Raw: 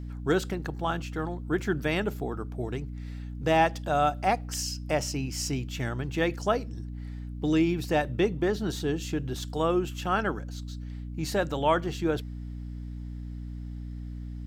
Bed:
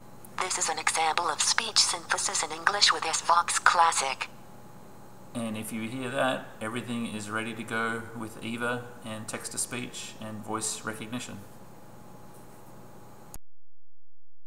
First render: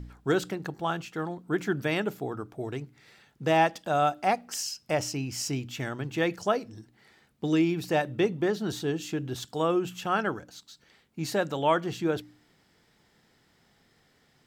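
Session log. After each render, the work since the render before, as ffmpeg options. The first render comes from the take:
-af "bandreject=f=60:t=h:w=4,bandreject=f=120:t=h:w=4,bandreject=f=180:t=h:w=4,bandreject=f=240:t=h:w=4,bandreject=f=300:t=h:w=4"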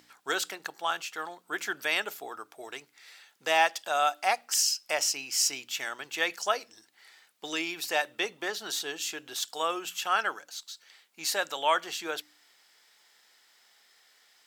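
-af "highpass=740,highshelf=f=2.3k:g=9"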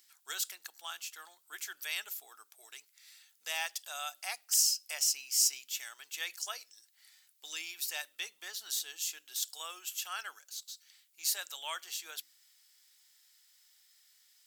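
-af "aderivative,bandreject=f=60:t=h:w=6,bandreject=f=120:t=h:w=6,bandreject=f=180:t=h:w=6,bandreject=f=240:t=h:w=6"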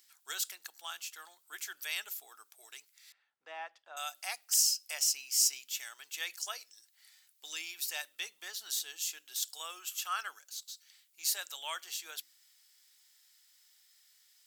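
-filter_complex "[0:a]asettb=1/sr,asplit=3[a][b][c];[a]atrim=end=3.124[d];[b]atrim=start=3.12:end=3.97,asetpts=PTS-STARTPTS,afade=t=in:d=0.004:c=qsin,afade=t=out:st=0.846:d=0.004:c=qsin,lowpass=1.2k[e];[c]atrim=start=3.966[f];[d][e]acrossfade=d=0.004:c1=hsin:c2=qsin[g];[g][f]acrossfade=d=0.004:c1=qsin:c2=hsin,asettb=1/sr,asplit=3[h][i][j];[h]atrim=end=9.794[k];[i]atrim=start=9.79:end=10.28,asetpts=PTS-STARTPTS,afade=t=in:d=0.004:c=qsin,afade=t=out:st=0.486:d=0.004:c=qsin,equalizer=f=1.2k:w=4:g=10[l];[j]atrim=start=10.276[m];[k][l]acrossfade=d=0.004:c1=hsin:c2=qsin[n];[n][m]acrossfade=d=0.004:c1=qsin:c2=hsin"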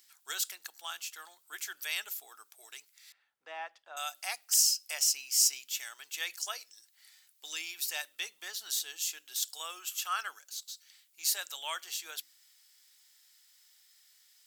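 -af "volume=2dB"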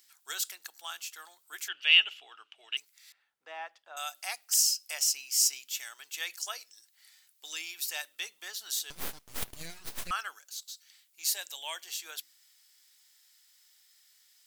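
-filter_complex "[0:a]asettb=1/sr,asplit=3[a][b][c];[a]atrim=end=1.684[d];[b]atrim=start=1.68:end=2.77,asetpts=PTS-STARTPTS,afade=t=in:d=0.004:c=qsin,afade=t=out:st=1.086:d=0.004:c=qsin,lowpass=f=2.9k:t=q:w=15[e];[c]atrim=start=2.766[f];[d][e]acrossfade=d=0.004:c1=hsin:c2=qsin[g];[g][f]acrossfade=d=0.004:c1=qsin:c2=hsin,asettb=1/sr,asplit=3[h][i][j];[h]atrim=end=8.904[k];[i]atrim=start=8.9:end=10.11,asetpts=PTS-STARTPTS,afade=t=in:d=0.004:c=qsin,afade=t=out:st=1.206:d=0.004:c=qsin,aeval=exprs='abs(val(0))':c=same[l];[j]atrim=start=10.106[m];[k][l]acrossfade=d=0.004:c1=hsin:c2=qsin[n];[n][m]acrossfade=d=0.004:c1=qsin:c2=hsin,asettb=1/sr,asplit=3[o][p][q];[o]atrim=end=11.324[r];[p]atrim=start=11.32:end=11.89,asetpts=PTS-STARTPTS,afade=t=in:d=0.004:c=qsin,afade=t=out:st=0.566:d=0.004:c=qsin,equalizer=f=1.3k:w=4.8:g=-13.5[s];[q]atrim=start=11.886[t];[r][s]acrossfade=d=0.004:c1=hsin:c2=qsin[u];[u][t]acrossfade=d=0.004:c1=qsin:c2=hsin"

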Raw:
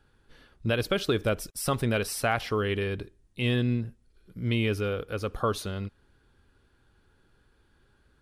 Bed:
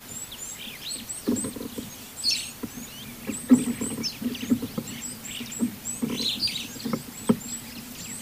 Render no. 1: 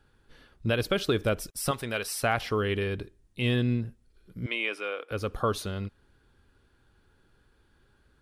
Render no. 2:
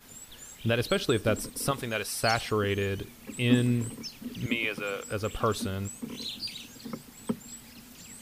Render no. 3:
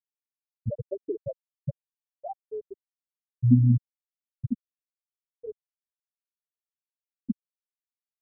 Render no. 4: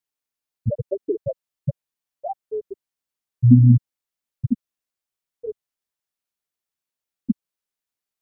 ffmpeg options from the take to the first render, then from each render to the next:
-filter_complex "[0:a]asettb=1/sr,asplit=3[a][b][c];[a]atrim=end=1.714[d];[b]atrim=start=1.71:end=2.23,asetpts=PTS-STARTPTS,afade=t=in:d=0.004:c=qsin,afade=t=out:st=0.516:d=0.004:c=qsin,lowshelf=f=420:g=-12[e];[c]atrim=start=2.226[f];[d][e]acrossfade=d=0.004:c1=hsin:c2=qsin[g];[g][f]acrossfade=d=0.004:c1=qsin:c2=hsin,asettb=1/sr,asplit=3[h][i][j];[h]atrim=end=4.464[k];[i]atrim=start=4.46:end=5.11,asetpts=PTS-STARTPTS,afade=t=in:d=0.004:c=qsin,afade=t=out:st=0.646:d=0.004:c=qsin,highpass=f=380:w=0.5412,highpass=f=380:w=1.3066,equalizer=f=420:t=q:w=4:g=-8,equalizer=f=1.1k:t=q:w=4:g=3,equalizer=f=2.3k:t=q:w=4:g=6,equalizer=f=4.4k:t=q:w=4:g=-7,equalizer=f=6.4k:t=q:w=4:g=-9,lowpass=f=9.1k:w=0.5412,lowpass=f=9.1k:w=1.3066[l];[j]atrim=start=5.106[m];[k][l]acrossfade=d=0.004:c1=hsin:c2=qsin[n];[n][m]acrossfade=d=0.004:c1=qsin:c2=hsin"
-filter_complex "[1:a]volume=-10dB[a];[0:a][a]amix=inputs=2:normalize=0"
-af "afftfilt=real='re*gte(hypot(re,im),0.447)':imag='im*gte(hypot(re,im),0.447)':win_size=1024:overlap=0.75,asubboost=boost=6:cutoff=190"
-af "volume=7.5dB,alimiter=limit=-2dB:level=0:latency=1"

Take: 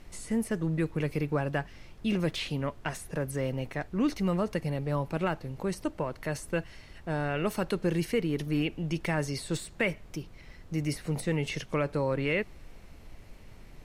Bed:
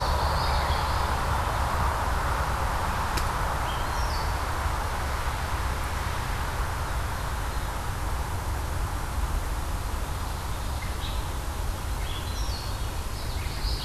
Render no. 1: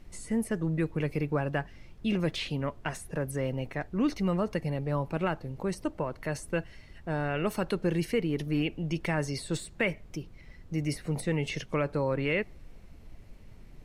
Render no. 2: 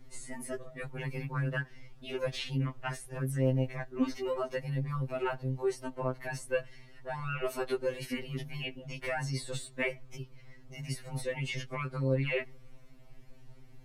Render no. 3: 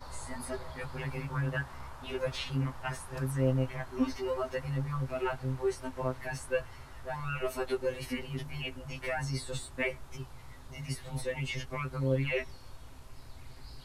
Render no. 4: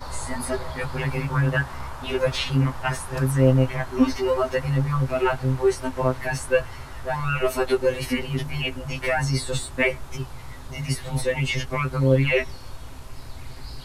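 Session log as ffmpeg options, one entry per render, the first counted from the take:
-af "afftdn=nr=6:nf=-51"
-af "afftfilt=real='re*2.45*eq(mod(b,6),0)':imag='im*2.45*eq(mod(b,6),0)':win_size=2048:overlap=0.75"
-filter_complex "[1:a]volume=-21dB[a];[0:a][a]amix=inputs=2:normalize=0"
-af "volume=11dB"

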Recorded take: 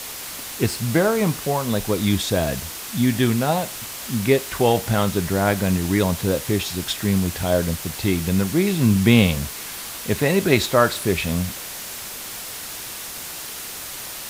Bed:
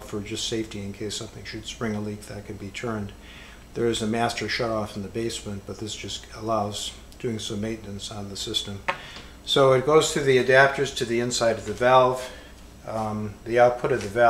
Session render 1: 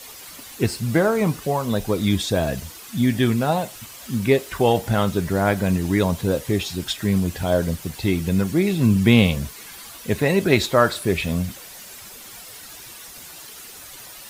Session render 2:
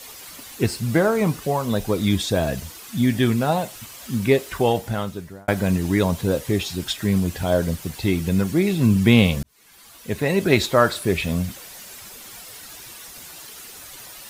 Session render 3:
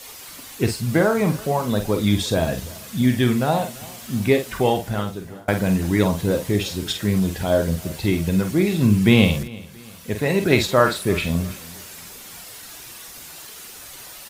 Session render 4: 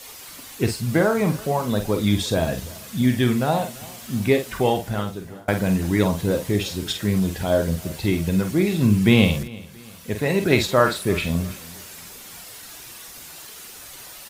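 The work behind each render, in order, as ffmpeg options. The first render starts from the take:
-af "afftdn=nr=10:nf=-34"
-filter_complex "[0:a]asplit=3[a][b][c];[a]atrim=end=5.48,asetpts=PTS-STARTPTS,afade=t=out:st=4.51:d=0.97[d];[b]atrim=start=5.48:end=9.43,asetpts=PTS-STARTPTS,afade=t=in:d=0.004:c=hsin,afade=t=out:st=3.946:d=0.004:c=hsin[e];[c]atrim=start=9.43,asetpts=PTS-STARTPTS,afade=t=in:d=1.08[f];[d][e][f]concat=n=3:v=0:a=1"
-filter_complex "[0:a]asplit=2[a][b];[b]adelay=48,volume=-7.5dB[c];[a][c]amix=inputs=2:normalize=0,aecho=1:1:339|678|1017:0.0841|0.0328|0.0128"
-af "volume=-1dB"

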